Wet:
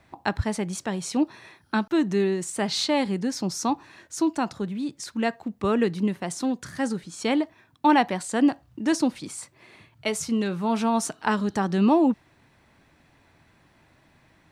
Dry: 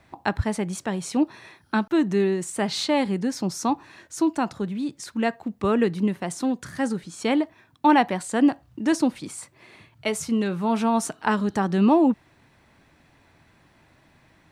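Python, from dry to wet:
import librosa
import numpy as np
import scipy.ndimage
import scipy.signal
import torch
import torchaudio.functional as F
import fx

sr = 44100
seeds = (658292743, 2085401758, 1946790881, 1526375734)

y = fx.dynamic_eq(x, sr, hz=5200.0, q=1.0, threshold_db=-47.0, ratio=4.0, max_db=4)
y = F.gain(torch.from_numpy(y), -1.5).numpy()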